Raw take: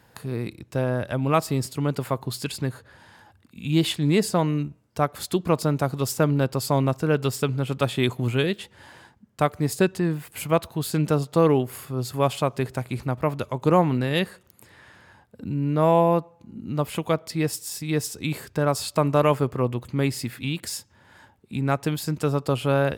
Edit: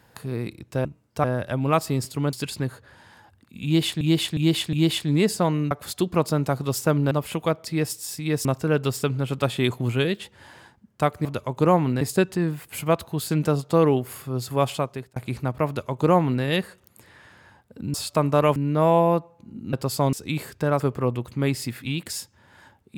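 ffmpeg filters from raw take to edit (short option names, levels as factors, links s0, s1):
-filter_complex "[0:a]asplit=18[s0][s1][s2][s3][s4][s5][s6][s7][s8][s9][s10][s11][s12][s13][s14][s15][s16][s17];[s0]atrim=end=0.852[s18];[s1]atrim=start=4.648:end=5.042[s19];[s2]atrim=start=0.848:end=1.942[s20];[s3]atrim=start=2.348:end=4.032[s21];[s4]atrim=start=3.668:end=4.032[s22];[s5]atrim=start=3.668:end=4.032[s23];[s6]atrim=start=3.668:end=4.652[s24];[s7]atrim=start=5.038:end=6.442[s25];[s8]atrim=start=16.738:end=18.082[s26];[s9]atrim=start=6.838:end=9.642[s27];[s10]atrim=start=13.298:end=14.062[s28];[s11]atrim=start=9.638:end=12.79,asetpts=PTS-STARTPTS,afade=t=out:st=2.712:d=0.44[s29];[s12]atrim=start=12.79:end=15.572,asetpts=PTS-STARTPTS,afade=t=in:d=0.004:c=hsin[s30];[s13]atrim=start=18.748:end=19.372[s31];[s14]atrim=start=15.568:end=16.742[s32];[s15]atrim=start=6.438:end=6.842[s33];[s16]atrim=start=18.078:end=18.752[s34];[s17]atrim=start=19.368[s35];[s18][s19]acrossfade=d=0.004:c1=hsin:c2=hsin[s36];[s36][s20]acrossfade=d=0.004:c1=hsin:c2=hsin[s37];[s37][s21]acrossfade=d=0.004:c1=hsin:c2=hsin[s38];[s38][s22]acrossfade=d=0.004:c1=hsin:c2=hsin[s39];[s39][s23]acrossfade=d=0.004:c1=hsin:c2=hsin[s40];[s40][s24]acrossfade=d=0.004:c1=hsin:c2=hsin[s41];[s41][s25]acrossfade=d=0.004:c1=hsin:c2=hsin[s42];[s42][s26]acrossfade=d=0.004:c1=hsin:c2=hsin[s43];[s43][s27]acrossfade=d=0.004:c1=hsin:c2=hsin[s44];[s44][s28]acrossfade=d=0.004:c1=hsin:c2=hsin[s45];[s29][s30]concat=n=2:v=0:a=1[s46];[s45][s46]acrossfade=d=0.004:c1=hsin:c2=hsin[s47];[s47][s31]acrossfade=d=0.004:c1=hsin:c2=hsin[s48];[s48][s32]acrossfade=d=0.004:c1=hsin:c2=hsin[s49];[s49][s33]acrossfade=d=0.004:c1=hsin:c2=hsin[s50];[s50][s34]acrossfade=d=0.004:c1=hsin:c2=hsin[s51];[s51][s35]acrossfade=d=0.004:c1=hsin:c2=hsin"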